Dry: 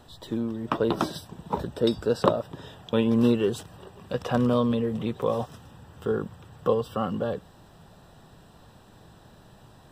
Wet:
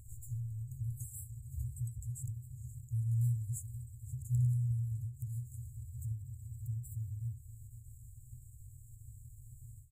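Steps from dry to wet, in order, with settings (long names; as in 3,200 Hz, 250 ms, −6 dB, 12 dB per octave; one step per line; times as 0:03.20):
repeating echo 523 ms, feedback 42%, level −20 dB
in parallel at −2.5 dB: downward compressor, threshold −38 dBFS, peak gain reduction 22 dB
on the sum: brick-wall band-stop 130–6,600 Hz
every ending faded ahead of time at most 150 dB per second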